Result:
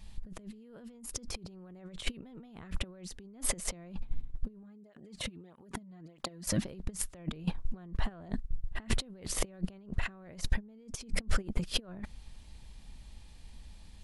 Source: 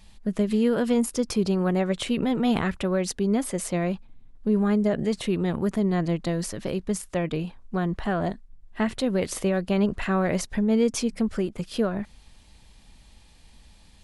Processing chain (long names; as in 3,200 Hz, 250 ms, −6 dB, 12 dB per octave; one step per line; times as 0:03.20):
compressor whose output falls as the input rises −36 dBFS, ratio −1
low-shelf EQ 160 Hz +7.5 dB
noise gate −27 dBFS, range −13 dB
0:04.63–0:06.65: through-zero flanger with one copy inverted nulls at 1.6 Hz, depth 2.8 ms